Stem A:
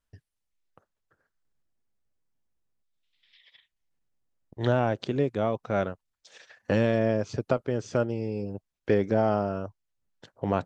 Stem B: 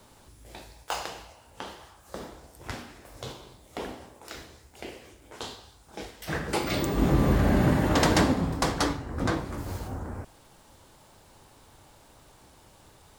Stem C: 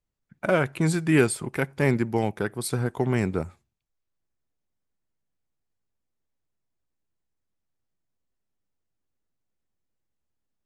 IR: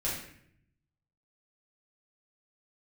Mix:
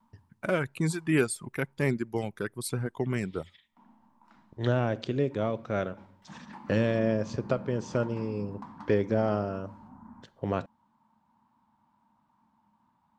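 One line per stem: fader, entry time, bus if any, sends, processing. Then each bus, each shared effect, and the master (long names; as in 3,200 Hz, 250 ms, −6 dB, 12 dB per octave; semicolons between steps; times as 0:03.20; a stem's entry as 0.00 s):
−2.0 dB, 0.00 s, send −21.5 dB, no processing
−1.0 dB, 0.00 s, no send, downward compressor 10 to 1, threshold −27 dBFS, peak gain reduction 10.5 dB; pair of resonant band-passes 450 Hz, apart 2.1 octaves; pitch vibrato 2.2 Hz 26 cents; automatic ducking −21 dB, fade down 1.35 s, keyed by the third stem
−4.0 dB, 0.00 s, no send, reverb reduction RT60 1 s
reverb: on, RT60 0.65 s, pre-delay 6 ms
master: parametric band 800 Hz −5 dB 0.67 octaves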